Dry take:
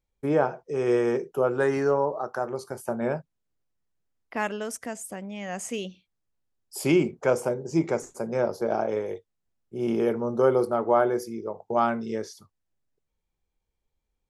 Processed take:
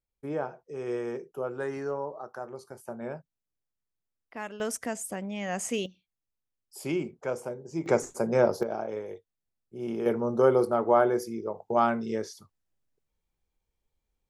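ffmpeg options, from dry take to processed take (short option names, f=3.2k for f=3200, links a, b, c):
-af "asetnsamples=n=441:p=0,asendcmd='4.6 volume volume 1.5dB;5.86 volume volume -9dB;7.86 volume volume 3dB;8.63 volume volume -7dB;10.06 volume volume -0.5dB',volume=-9.5dB"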